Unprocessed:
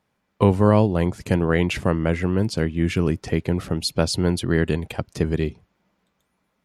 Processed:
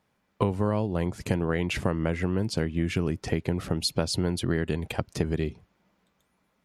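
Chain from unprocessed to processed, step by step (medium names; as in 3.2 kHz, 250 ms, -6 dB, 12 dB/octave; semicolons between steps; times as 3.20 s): compression 5:1, threshold -22 dBFS, peak gain reduction 11.5 dB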